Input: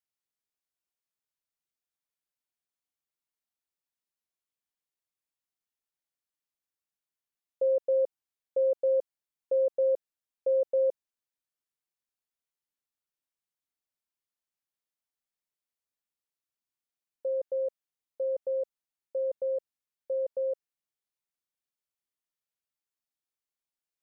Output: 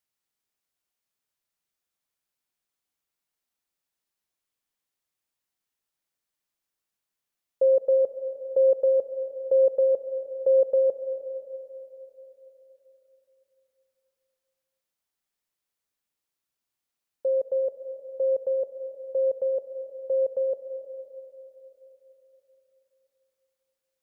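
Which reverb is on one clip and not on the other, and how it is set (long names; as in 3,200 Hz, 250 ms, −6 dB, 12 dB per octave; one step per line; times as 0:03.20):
comb and all-pass reverb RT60 3.8 s, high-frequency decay 0.5×, pre-delay 80 ms, DRR 10 dB
level +6 dB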